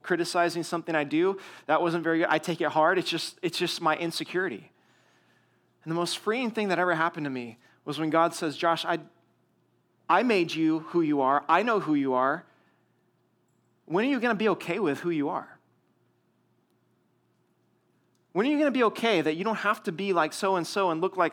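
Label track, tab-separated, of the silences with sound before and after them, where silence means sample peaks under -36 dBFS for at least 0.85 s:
4.590000	5.860000	silence
9.010000	10.100000	silence
12.390000	13.910000	silence
15.440000	18.350000	silence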